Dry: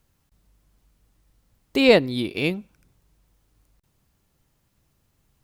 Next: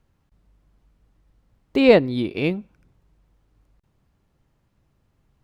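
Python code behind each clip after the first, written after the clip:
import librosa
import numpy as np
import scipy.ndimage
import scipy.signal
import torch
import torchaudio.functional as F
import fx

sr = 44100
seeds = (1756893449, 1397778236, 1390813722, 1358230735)

y = fx.lowpass(x, sr, hz=1700.0, slope=6)
y = F.gain(torch.from_numpy(y), 2.5).numpy()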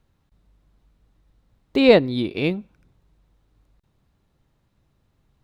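y = fx.peak_eq(x, sr, hz=3800.0, db=6.0, octaves=0.25)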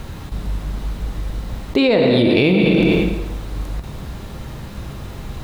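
y = fx.echo_feedback(x, sr, ms=109, feedback_pct=58, wet_db=-18.0)
y = fx.rev_plate(y, sr, seeds[0], rt60_s=1.0, hf_ratio=0.85, predelay_ms=0, drr_db=6.0)
y = fx.env_flatten(y, sr, amount_pct=100)
y = F.gain(torch.from_numpy(y), -5.5).numpy()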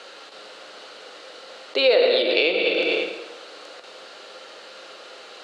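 y = fx.cabinet(x, sr, low_hz=440.0, low_slope=24, high_hz=8200.0, hz=(520.0, 960.0, 1400.0, 2900.0, 4400.0), db=(6, -6, 6, 7, 9))
y = F.gain(torch.from_numpy(y), -4.0).numpy()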